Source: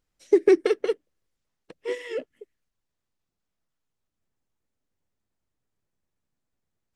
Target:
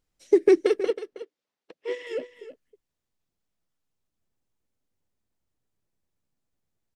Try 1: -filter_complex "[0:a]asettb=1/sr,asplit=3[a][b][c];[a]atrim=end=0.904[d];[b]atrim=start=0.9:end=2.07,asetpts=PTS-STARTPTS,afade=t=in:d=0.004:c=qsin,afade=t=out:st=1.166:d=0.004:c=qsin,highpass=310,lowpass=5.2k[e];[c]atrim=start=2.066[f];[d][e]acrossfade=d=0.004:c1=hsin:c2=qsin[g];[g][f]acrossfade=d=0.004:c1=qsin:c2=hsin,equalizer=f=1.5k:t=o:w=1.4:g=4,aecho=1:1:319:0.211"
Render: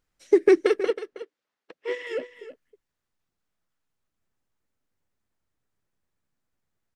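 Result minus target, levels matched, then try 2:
2000 Hz band +4.5 dB
-filter_complex "[0:a]asettb=1/sr,asplit=3[a][b][c];[a]atrim=end=0.904[d];[b]atrim=start=0.9:end=2.07,asetpts=PTS-STARTPTS,afade=t=in:d=0.004:c=qsin,afade=t=out:st=1.166:d=0.004:c=qsin,highpass=310,lowpass=5.2k[e];[c]atrim=start=2.066[f];[d][e]acrossfade=d=0.004:c1=hsin:c2=qsin[g];[g][f]acrossfade=d=0.004:c1=qsin:c2=hsin,equalizer=f=1.5k:t=o:w=1.4:g=-2.5,aecho=1:1:319:0.211"

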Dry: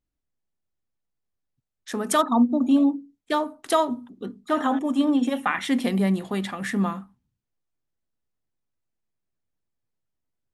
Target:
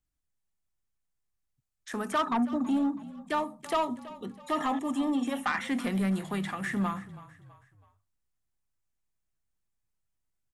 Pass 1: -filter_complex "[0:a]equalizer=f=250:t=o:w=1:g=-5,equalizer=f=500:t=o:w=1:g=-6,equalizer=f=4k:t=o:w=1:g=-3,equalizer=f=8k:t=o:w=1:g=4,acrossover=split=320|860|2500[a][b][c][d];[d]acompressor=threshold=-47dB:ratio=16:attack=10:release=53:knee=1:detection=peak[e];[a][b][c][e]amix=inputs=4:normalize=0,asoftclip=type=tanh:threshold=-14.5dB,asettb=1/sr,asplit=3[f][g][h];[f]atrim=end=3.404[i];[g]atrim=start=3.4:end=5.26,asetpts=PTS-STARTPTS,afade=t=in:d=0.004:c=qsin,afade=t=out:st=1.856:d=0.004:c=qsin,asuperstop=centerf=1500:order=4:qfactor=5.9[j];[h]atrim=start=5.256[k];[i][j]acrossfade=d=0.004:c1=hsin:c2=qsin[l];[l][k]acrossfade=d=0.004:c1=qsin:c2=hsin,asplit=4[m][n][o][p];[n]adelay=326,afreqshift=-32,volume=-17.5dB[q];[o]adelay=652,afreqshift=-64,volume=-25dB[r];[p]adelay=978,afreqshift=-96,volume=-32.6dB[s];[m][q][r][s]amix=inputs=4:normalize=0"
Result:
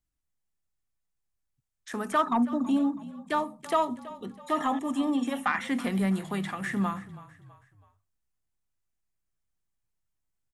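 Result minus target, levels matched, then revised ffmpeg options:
soft clip: distortion -9 dB
-filter_complex "[0:a]equalizer=f=250:t=o:w=1:g=-5,equalizer=f=500:t=o:w=1:g=-6,equalizer=f=4k:t=o:w=1:g=-3,equalizer=f=8k:t=o:w=1:g=4,acrossover=split=320|860|2500[a][b][c][d];[d]acompressor=threshold=-47dB:ratio=16:attack=10:release=53:knee=1:detection=peak[e];[a][b][c][e]amix=inputs=4:normalize=0,asoftclip=type=tanh:threshold=-21.5dB,asettb=1/sr,asplit=3[f][g][h];[f]atrim=end=3.404[i];[g]atrim=start=3.4:end=5.26,asetpts=PTS-STARTPTS,afade=t=in:d=0.004:c=qsin,afade=t=out:st=1.856:d=0.004:c=qsin,asuperstop=centerf=1500:order=4:qfactor=5.9[j];[h]atrim=start=5.256[k];[i][j]acrossfade=d=0.004:c1=hsin:c2=qsin[l];[l][k]acrossfade=d=0.004:c1=qsin:c2=hsin,asplit=4[m][n][o][p];[n]adelay=326,afreqshift=-32,volume=-17.5dB[q];[o]adelay=652,afreqshift=-64,volume=-25dB[r];[p]adelay=978,afreqshift=-96,volume=-32.6dB[s];[m][q][r][s]amix=inputs=4:normalize=0"

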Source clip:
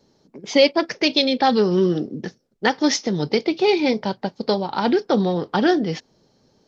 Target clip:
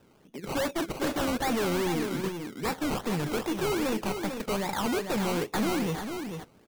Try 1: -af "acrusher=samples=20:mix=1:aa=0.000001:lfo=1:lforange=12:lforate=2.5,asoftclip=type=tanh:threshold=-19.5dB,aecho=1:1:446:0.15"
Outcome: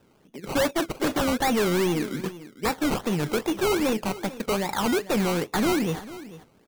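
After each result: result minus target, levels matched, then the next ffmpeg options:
echo-to-direct -9.5 dB; soft clip: distortion -4 dB
-af "acrusher=samples=20:mix=1:aa=0.000001:lfo=1:lforange=12:lforate=2.5,asoftclip=type=tanh:threshold=-19.5dB,aecho=1:1:446:0.447"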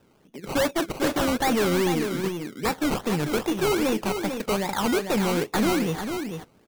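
soft clip: distortion -4 dB
-af "acrusher=samples=20:mix=1:aa=0.000001:lfo=1:lforange=12:lforate=2.5,asoftclip=type=tanh:threshold=-26.5dB,aecho=1:1:446:0.447"

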